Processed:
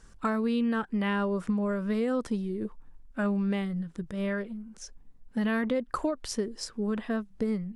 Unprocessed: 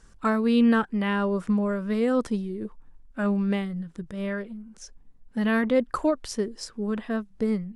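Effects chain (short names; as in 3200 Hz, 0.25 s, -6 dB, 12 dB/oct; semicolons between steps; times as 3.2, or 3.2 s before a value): compressor 6:1, threshold -25 dBFS, peak gain reduction 8.5 dB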